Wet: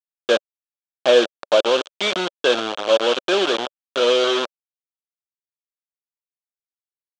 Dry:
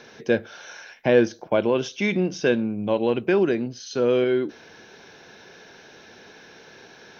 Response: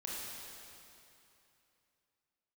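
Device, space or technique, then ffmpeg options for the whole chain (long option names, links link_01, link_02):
hand-held game console: -af "acrusher=bits=3:mix=0:aa=0.000001,highpass=490,equalizer=frequency=570:width_type=q:width=4:gain=6,equalizer=frequency=870:width_type=q:width=4:gain=-3,equalizer=frequency=1300:width_type=q:width=4:gain=3,equalizer=frequency=2000:width_type=q:width=4:gain=-10,equalizer=frequency=3300:width_type=q:width=4:gain=9,equalizer=frequency=5000:width_type=q:width=4:gain=-5,lowpass=frequency=5800:width=0.5412,lowpass=frequency=5800:width=1.3066,volume=4dB"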